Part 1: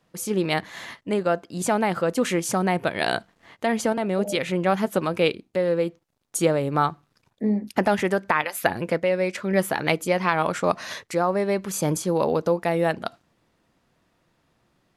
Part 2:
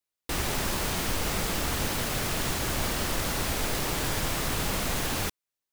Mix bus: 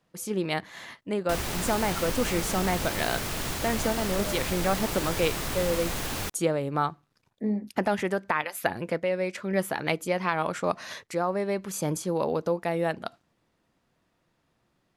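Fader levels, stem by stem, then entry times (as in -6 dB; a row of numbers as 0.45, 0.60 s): -5.0, -2.5 dB; 0.00, 1.00 s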